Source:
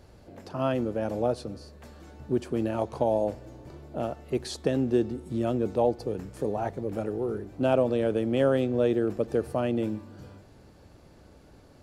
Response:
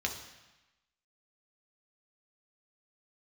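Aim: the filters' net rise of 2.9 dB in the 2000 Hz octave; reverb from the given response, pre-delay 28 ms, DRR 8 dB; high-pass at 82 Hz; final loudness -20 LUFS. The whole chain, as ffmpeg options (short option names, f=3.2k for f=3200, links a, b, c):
-filter_complex "[0:a]highpass=82,equalizer=f=2k:t=o:g=4,asplit=2[a][b];[1:a]atrim=start_sample=2205,adelay=28[c];[b][c]afir=irnorm=-1:irlink=0,volume=-12.5dB[d];[a][d]amix=inputs=2:normalize=0,volume=7.5dB"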